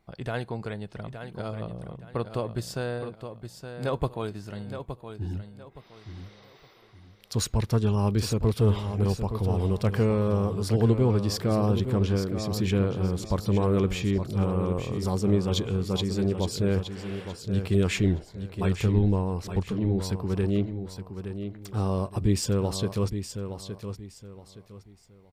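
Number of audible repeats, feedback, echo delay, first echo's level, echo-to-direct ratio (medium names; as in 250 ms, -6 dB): 3, 29%, 868 ms, -9.0 dB, -8.5 dB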